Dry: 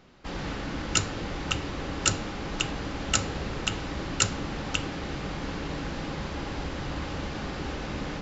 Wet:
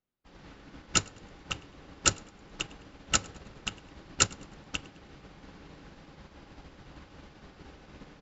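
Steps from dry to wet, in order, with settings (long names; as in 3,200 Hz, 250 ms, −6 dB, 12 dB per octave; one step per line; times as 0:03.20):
on a send: repeating echo 105 ms, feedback 45%, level −13 dB
on the sum: expander for the loud parts 2.5 to 1, over −45 dBFS
level +2 dB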